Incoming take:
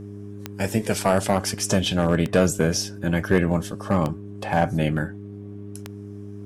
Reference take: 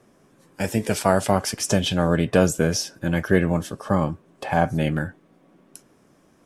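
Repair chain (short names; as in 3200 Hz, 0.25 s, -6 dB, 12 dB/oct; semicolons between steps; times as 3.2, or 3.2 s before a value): clip repair -9 dBFS; de-click; de-hum 101.5 Hz, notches 4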